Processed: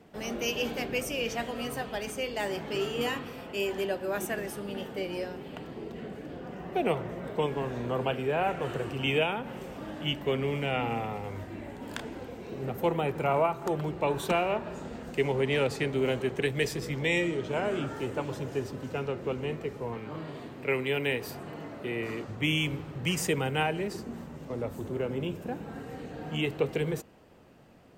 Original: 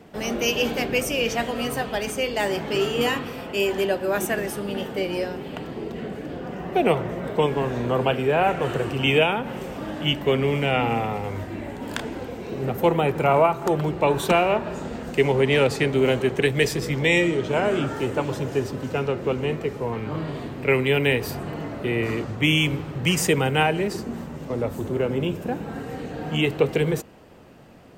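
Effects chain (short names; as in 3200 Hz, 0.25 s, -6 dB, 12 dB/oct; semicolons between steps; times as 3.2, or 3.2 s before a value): 19.97–22.29 HPF 170 Hz 6 dB/oct; gain -8 dB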